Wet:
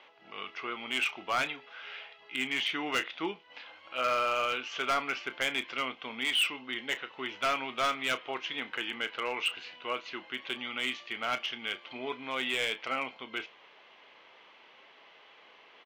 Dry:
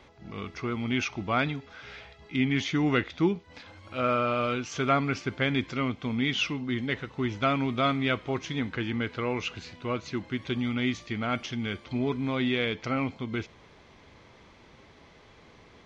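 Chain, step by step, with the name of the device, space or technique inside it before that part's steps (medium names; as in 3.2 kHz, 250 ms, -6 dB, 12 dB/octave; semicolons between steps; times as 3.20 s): megaphone (band-pass 620–3400 Hz; peaking EQ 2.9 kHz +10 dB 0.33 oct; hard clipper -23.5 dBFS, distortion -11 dB; doubling 31 ms -13 dB)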